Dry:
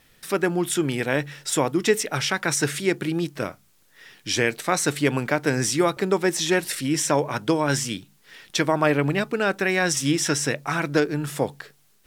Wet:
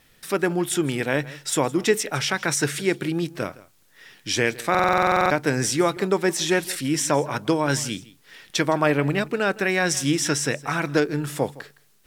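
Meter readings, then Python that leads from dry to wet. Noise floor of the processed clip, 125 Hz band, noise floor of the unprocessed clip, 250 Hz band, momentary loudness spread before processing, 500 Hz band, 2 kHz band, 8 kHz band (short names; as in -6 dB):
-59 dBFS, 0.0 dB, -60 dBFS, 0.0 dB, 6 LU, +0.5 dB, +0.5 dB, -0.5 dB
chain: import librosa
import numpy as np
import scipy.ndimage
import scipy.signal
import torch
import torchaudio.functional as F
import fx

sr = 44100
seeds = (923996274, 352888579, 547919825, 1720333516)

p1 = x + fx.echo_single(x, sr, ms=163, db=-20.0, dry=0)
y = fx.buffer_glitch(p1, sr, at_s=(4.7,), block=2048, repeats=12)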